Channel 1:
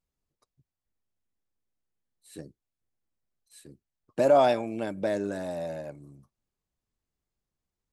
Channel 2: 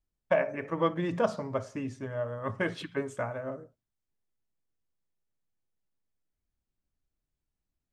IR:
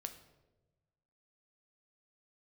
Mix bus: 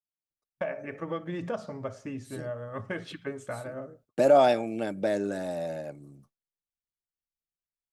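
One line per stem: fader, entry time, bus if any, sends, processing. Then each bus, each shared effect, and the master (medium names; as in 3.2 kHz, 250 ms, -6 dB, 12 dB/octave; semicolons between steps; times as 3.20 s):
+1.0 dB, 0.00 s, no send, high-pass 110 Hz
-1.5 dB, 0.30 s, no send, compression 2.5:1, threshold -29 dBFS, peak gain reduction 6.5 dB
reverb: none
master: gate with hold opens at -47 dBFS; band-stop 1 kHz, Q 6.9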